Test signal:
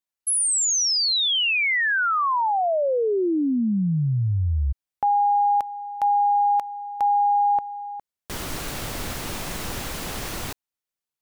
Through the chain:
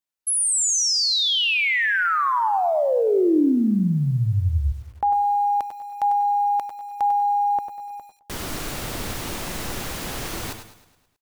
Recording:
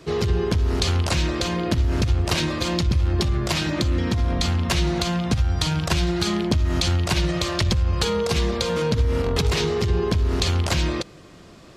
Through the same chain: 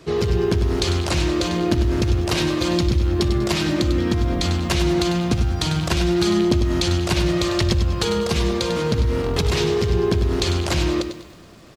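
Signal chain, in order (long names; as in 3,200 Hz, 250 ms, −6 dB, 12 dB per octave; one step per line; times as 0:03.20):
repeating echo 106 ms, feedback 58%, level −15.5 dB
dynamic equaliser 320 Hz, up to +4 dB, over −38 dBFS, Q 1.5
feedback echo at a low word length 97 ms, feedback 35%, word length 8 bits, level −9 dB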